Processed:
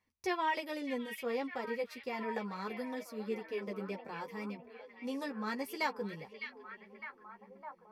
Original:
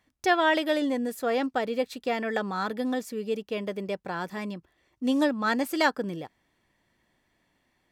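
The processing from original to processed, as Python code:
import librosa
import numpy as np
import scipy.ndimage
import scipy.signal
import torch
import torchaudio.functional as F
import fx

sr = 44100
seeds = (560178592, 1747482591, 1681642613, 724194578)

y = fx.chorus_voices(x, sr, voices=6, hz=0.56, base_ms=11, depth_ms=3.7, mix_pct=40)
y = fx.ripple_eq(y, sr, per_octave=0.85, db=8)
y = fx.echo_stepped(y, sr, ms=607, hz=2700.0, octaves=-0.7, feedback_pct=70, wet_db=-4.5)
y = y * 10.0 ** (-8.5 / 20.0)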